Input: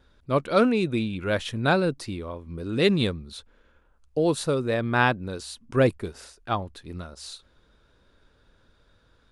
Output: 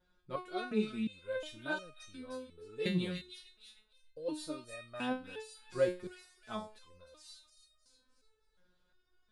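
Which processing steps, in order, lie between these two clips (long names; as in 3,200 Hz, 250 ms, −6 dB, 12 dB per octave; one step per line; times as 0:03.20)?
on a send: delay with a high-pass on its return 305 ms, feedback 33%, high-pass 2,700 Hz, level −5 dB
on the sum: step-sequenced resonator 2.8 Hz 180–620 Hz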